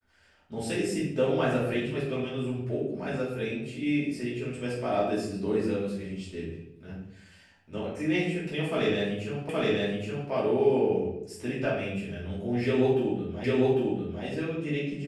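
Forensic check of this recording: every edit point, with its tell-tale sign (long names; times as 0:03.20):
0:09.49: the same again, the last 0.82 s
0:13.44: the same again, the last 0.8 s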